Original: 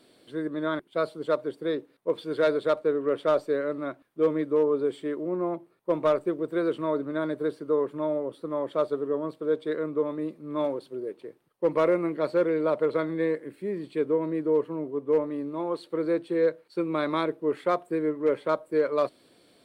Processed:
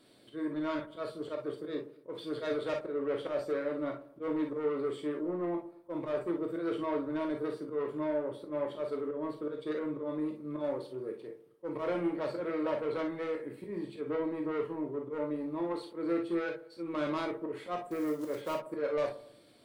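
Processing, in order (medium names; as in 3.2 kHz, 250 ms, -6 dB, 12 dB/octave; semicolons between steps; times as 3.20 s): 17.91–18.55 s: block-companded coder 5-bit; bass shelf 170 Hz +3 dB; slow attack 115 ms; saturation -24.5 dBFS, distortion -11 dB; feedback echo behind a low-pass 113 ms, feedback 38%, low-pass 1.1 kHz, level -15 dB; gated-style reverb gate 80 ms flat, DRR 1.5 dB; trim -5 dB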